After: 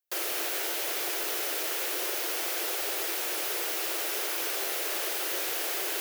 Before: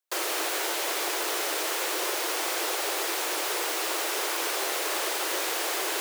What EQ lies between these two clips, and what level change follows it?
graphic EQ 250/500/1000/2000/4000/8000 Hz -9/-4/-11/-4/-5/-7 dB; +3.5 dB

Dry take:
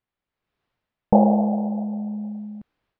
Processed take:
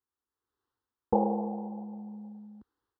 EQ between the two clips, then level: high-pass 63 Hz; dynamic bell 460 Hz, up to +4 dB, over -36 dBFS, Q 5.3; static phaser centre 630 Hz, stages 6; -4.5 dB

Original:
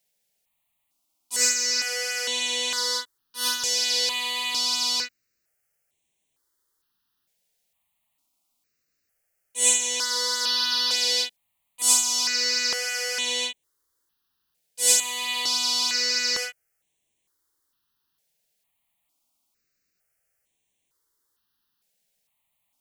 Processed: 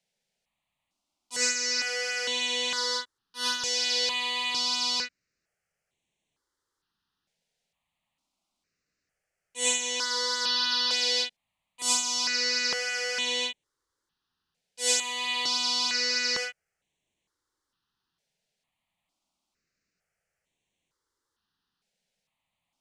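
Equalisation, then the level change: distance through air 82 m; peaking EQ 170 Hz +4.5 dB 0.44 oct; 0.0 dB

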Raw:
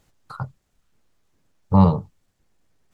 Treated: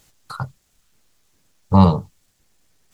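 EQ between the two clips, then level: treble shelf 2.4 kHz +11.5 dB; +2.0 dB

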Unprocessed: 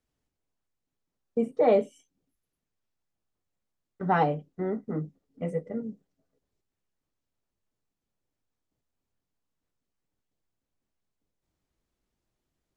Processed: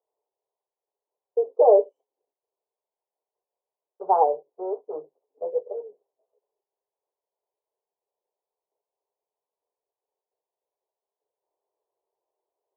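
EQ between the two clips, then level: elliptic band-pass 410–990 Hz, stop band 40 dB; +6.5 dB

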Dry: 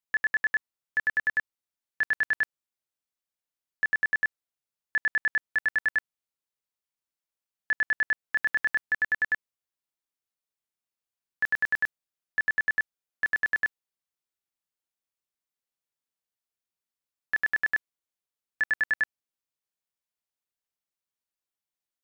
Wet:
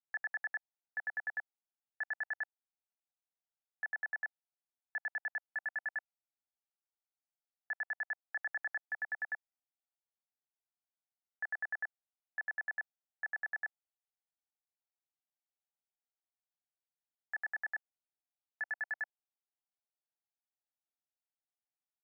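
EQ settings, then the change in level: ladder band-pass 930 Hz, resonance 45%; distance through air 450 m; static phaser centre 710 Hz, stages 8; +6.5 dB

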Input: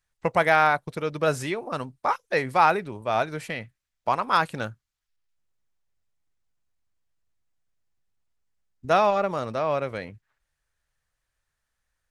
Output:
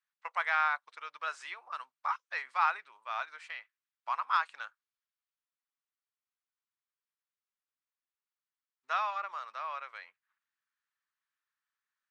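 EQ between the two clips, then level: Chebyshev band-pass 1.1–9 kHz, order 3; distance through air 61 m; tilt EQ -2 dB/octave; -4.5 dB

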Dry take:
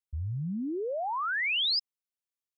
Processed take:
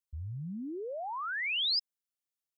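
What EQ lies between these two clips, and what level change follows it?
treble shelf 3.7 kHz +7 dB; -6.0 dB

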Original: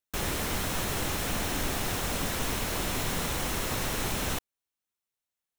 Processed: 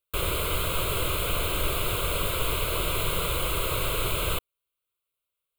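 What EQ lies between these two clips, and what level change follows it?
static phaser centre 1.2 kHz, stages 8; +6.0 dB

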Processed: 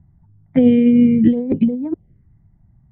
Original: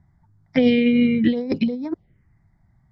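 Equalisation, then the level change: elliptic low-pass 3.3 kHz, stop band 40 dB; tilt shelf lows +10 dB, about 770 Hz; -1.5 dB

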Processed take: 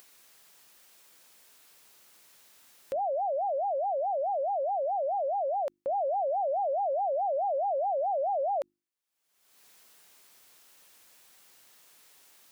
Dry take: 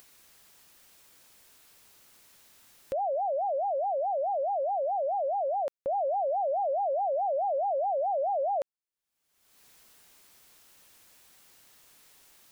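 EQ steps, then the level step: bass shelf 130 Hz -11.5 dB; hum notches 50/100/150/200/250/300/350 Hz; 0.0 dB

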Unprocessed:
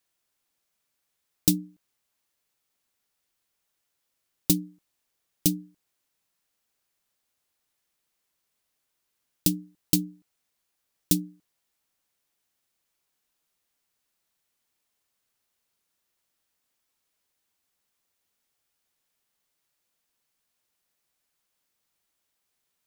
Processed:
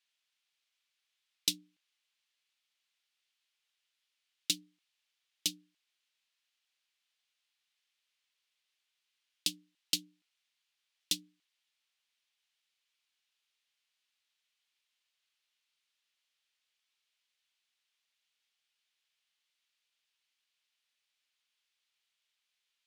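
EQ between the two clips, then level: band-pass filter 3.1 kHz, Q 1.6; +4.0 dB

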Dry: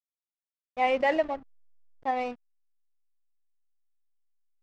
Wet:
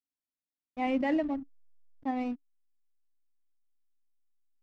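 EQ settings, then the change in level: FFT filter 190 Hz 0 dB, 280 Hz +11 dB, 400 Hz -8 dB; 0.0 dB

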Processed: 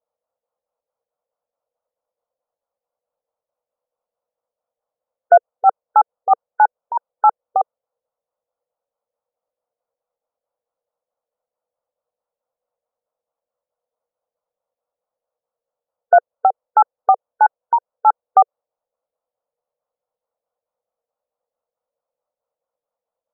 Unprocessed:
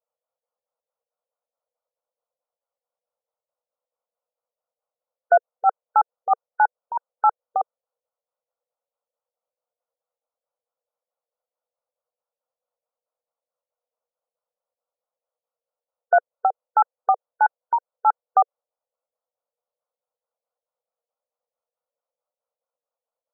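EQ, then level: low-pass 1.2 kHz 12 dB/octave; +6.5 dB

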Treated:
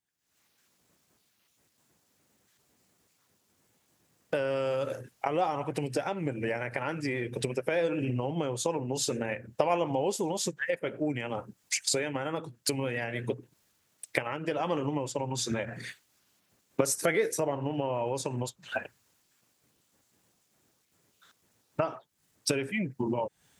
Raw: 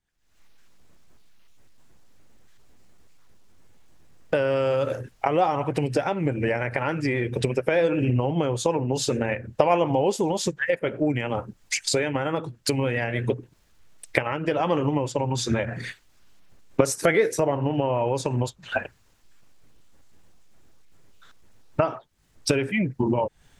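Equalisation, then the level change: high-pass 120 Hz; treble shelf 6.8 kHz +10.5 dB; -7.0 dB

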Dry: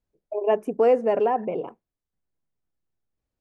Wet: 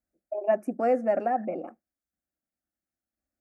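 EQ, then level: high-pass 66 Hz; static phaser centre 650 Hz, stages 8; 0.0 dB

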